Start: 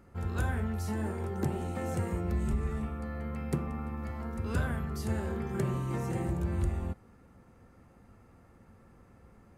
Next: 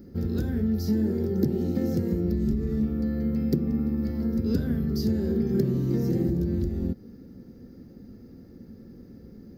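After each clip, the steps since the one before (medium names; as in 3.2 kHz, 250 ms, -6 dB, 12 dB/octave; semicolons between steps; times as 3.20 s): compression 3:1, threshold -34 dBFS, peak gain reduction 7.5 dB; FFT filter 100 Hz 0 dB, 250 Hz +11 dB, 460 Hz +4 dB, 660 Hz -8 dB, 1.1 kHz -18 dB, 1.7 kHz -7 dB, 2.6 kHz -12 dB, 5 kHz +8 dB, 9.1 kHz -19 dB, 14 kHz +10 dB; trim +6.5 dB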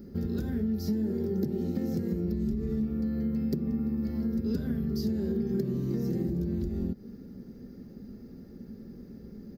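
comb 4.9 ms, depth 33%; compression 2.5:1, threshold -29 dBFS, peak gain reduction 9 dB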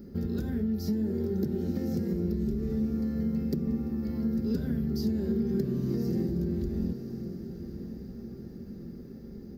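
echo that smears into a reverb 1071 ms, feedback 51%, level -10.5 dB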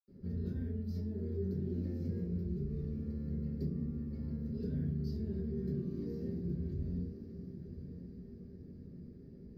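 reverberation RT60 0.40 s, pre-delay 77 ms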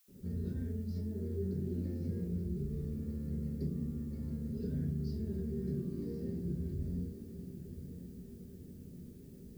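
added noise blue -69 dBFS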